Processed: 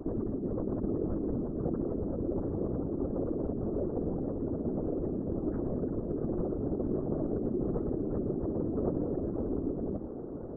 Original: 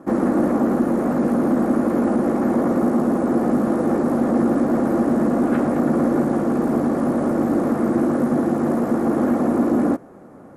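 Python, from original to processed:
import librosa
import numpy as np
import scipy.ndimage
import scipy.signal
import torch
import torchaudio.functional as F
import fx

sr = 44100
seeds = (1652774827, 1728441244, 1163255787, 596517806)

p1 = fx.envelope_sharpen(x, sr, power=2.0)
p2 = fx.air_absorb(p1, sr, metres=96.0)
p3 = fx.lpc_vocoder(p2, sr, seeds[0], excitation='pitch_kept', order=10)
p4 = fx.hum_notches(p3, sr, base_hz=60, count=4)
p5 = fx.over_compress(p4, sr, threshold_db=-26.0, ratio=-1.0)
p6 = fx.whisperise(p5, sr, seeds[1])
p7 = p6 + fx.echo_tape(p6, sr, ms=658, feedback_pct=77, wet_db=-12.0, lp_hz=2400.0, drive_db=7.0, wow_cents=32, dry=0)
p8 = fx.dynamic_eq(p7, sr, hz=650.0, q=2.0, threshold_db=-41.0, ratio=4.0, max_db=-4)
y = p8 * 10.0 ** (-6.0 / 20.0)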